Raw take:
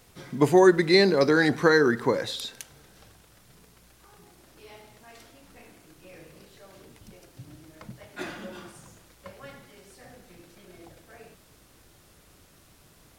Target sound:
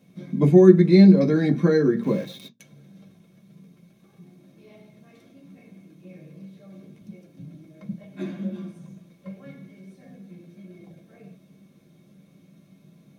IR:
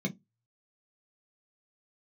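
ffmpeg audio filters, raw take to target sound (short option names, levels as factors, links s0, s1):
-filter_complex "[0:a]asettb=1/sr,asplit=3[s0][s1][s2];[s0]atrim=end=2.034[s3];[s1]atrim=start=2.03:end=2.6,asetpts=PTS-STARTPTS,afade=t=in:d=0.004:c=qsin,afade=t=out:st=0.566:d=0.004:c=qsin,aeval=exprs='val(0)*gte(abs(val(0)),0.0251)':c=same[s4];[s2]atrim=start=2.596[s5];[s3][s4]acrossfade=d=0.004:c1=hsin:c2=qsin[s6];[s6][s5]acrossfade=d=0.004:c1=qsin:c2=hsin[s7];[1:a]atrim=start_sample=2205[s8];[s7][s8]afir=irnorm=-1:irlink=0,volume=0.355"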